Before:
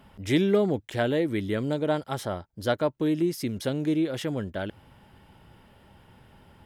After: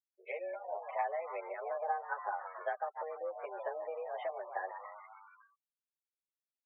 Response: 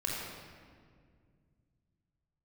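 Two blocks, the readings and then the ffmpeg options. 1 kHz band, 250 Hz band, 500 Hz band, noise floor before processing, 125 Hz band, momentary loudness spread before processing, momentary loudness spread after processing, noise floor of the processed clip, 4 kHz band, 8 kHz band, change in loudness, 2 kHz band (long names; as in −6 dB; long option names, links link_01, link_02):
−0.5 dB, below −35 dB, −12.0 dB, −58 dBFS, below −40 dB, 9 LU, 8 LU, below −85 dBFS, below −25 dB, below −35 dB, −12.5 dB, −8.0 dB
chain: -filter_complex "[0:a]afftdn=noise_reduction=18:noise_floor=-37,aecho=1:1:4.6:0.4,asplit=7[link_01][link_02][link_03][link_04][link_05][link_06][link_07];[link_02]adelay=141,afreqshift=130,volume=-15.5dB[link_08];[link_03]adelay=282,afreqshift=260,volume=-19.7dB[link_09];[link_04]adelay=423,afreqshift=390,volume=-23.8dB[link_10];[link_05]adelay=564,afreqshift=520,volume=-28dB[link_11];[link_06]adelay=705,afreqshift=650,volume=-32.1dB[link_12];[link_07]adelay=846,afreqshift=780,volume=-36.3dB[link_13];[link_01][link_08][link_09][link_10][link_11][link_12][link_13]amix=inputs=7:normalize=0,acompressor=threshold=-32dB:ratio=16,aphaser=in_gain=1:out_gain=1:delay=2:decay=0.22:speed=0.56:type=sinusoidal,highpass=frequency=370:width_type=q:width=0.5412,highpass=frequency=370:width_type=q:width=1.307,lowpass=frequency=2300:width_type=q:width=0.5176,lowpass=frequency=2300:width_type=q:width=0.7071,lowpass=frequency=2300:width_type=q:width=1.932,afreqshift=170,afftfilt=real='re*gte(hypot(re,im),0.00282)':imag='im*gte(hypot(re,im),0.00282)':win_size=1024:overlap=0.75,asplit=2[link_14][link_15];[link_15]adelay=8.7,afreqshift=-1.9[link_16];[link_14][link_16]amix=inputs=2:normalize=1,volume=3dB"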